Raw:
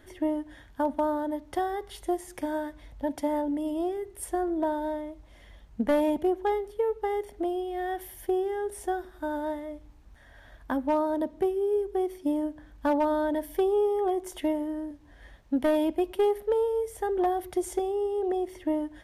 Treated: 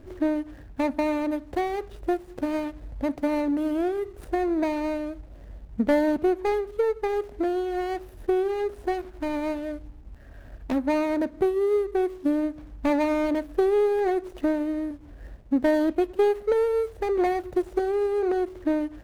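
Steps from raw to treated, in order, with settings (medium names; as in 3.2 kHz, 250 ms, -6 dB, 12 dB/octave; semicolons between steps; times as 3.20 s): median filter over 41 samples; in parallel at +3 dB: compression, threshold -40 dBFS, peak gain reduction 18 dB; on the sum: trim +2 dB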